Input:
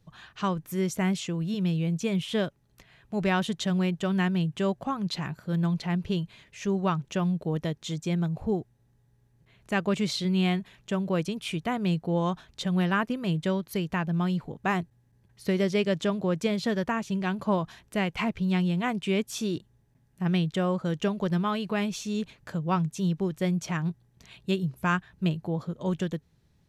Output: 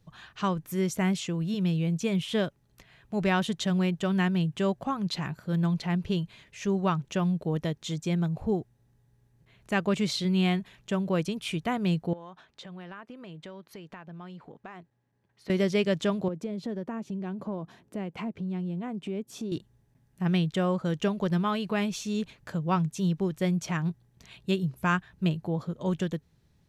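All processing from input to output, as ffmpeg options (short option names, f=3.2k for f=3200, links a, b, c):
-filter_complex "[0:a]asettb=1/sr,asplit=3[a][b][c];[a]atrim=end=12.134[d];[b]atrim=start=12.13:end=15.5,asetpts=PTS-STARTPTS,afade=t=in:d=0.004:c=qsin,afade=t=out:st=3.366:d=0.004:c=qsin,highpass=f=470:p=1,aemphasis=mode=reproduction:type=75kf,acompressor=threshold=-41dB:ratio=5:attack=3.2:release=140:knee=1:detection=peak[e];[c]atrim=start=15.496[f];[d][e]acrossfade=d=0.004:c1=hsin:c2=qsin[g];[g][f]acrossfade=d=0.004:c1=qsin:c2=hsin,asettb=1/sr,asplit=3[h][i][j];[h]atrim=end=16.284[k];[i]atrim=start=16.28:end=19.52,asetpts=PTS-STARTPTS,afade=t=in:d=0.004:c=qsin,afade=t=out:st=3.236:d=0.004:c=qsin,highpass=230,tiltshelf=f=720:g=10,acompressor=threshold=-35dB:ratio=2.5:attack=3.2:release=140:knee=1:detection=peak[l];[j]atrim=start=19.516[m];[k][l]acrossfade=d=0.004:c1=hsin:c2=qsin[n];[n][m]acrossfade=d=0.004:c1=qsin:c2=hsin"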